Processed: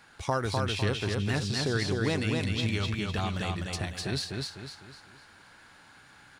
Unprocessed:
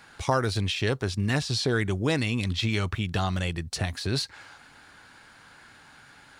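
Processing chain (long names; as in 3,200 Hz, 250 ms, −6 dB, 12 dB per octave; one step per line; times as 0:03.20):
repeating echo 252 ms, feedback 40%, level −3 dB
every ending faded ahead of time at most 180 dB per second
level −4.5 dB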